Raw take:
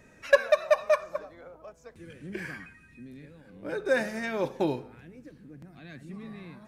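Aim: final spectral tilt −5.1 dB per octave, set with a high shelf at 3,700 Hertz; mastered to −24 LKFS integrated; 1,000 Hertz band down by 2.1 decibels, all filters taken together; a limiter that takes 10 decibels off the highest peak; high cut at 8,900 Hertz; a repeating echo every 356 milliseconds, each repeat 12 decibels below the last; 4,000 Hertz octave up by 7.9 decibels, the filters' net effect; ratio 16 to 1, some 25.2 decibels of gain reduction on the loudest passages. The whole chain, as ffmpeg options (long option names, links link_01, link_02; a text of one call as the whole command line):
ffmpeg -i in.wav -af "lowpass=8900,equalizer=frequency=1000:width_type=o:gain=-3.5,highshelf=frequency=3700:gain=7.5,equalizer=frequency=4000:width_type=o:gain=5,acompressor=threshold=-41dB:ratio=16,alimiter=level_in=13.5dB:limit=-24dB:level=0:latency=1,volume=-13.5dB,aecho=1:1:356|712|1068:0.251|0.0628|0.0157,volume=24dB" out.wav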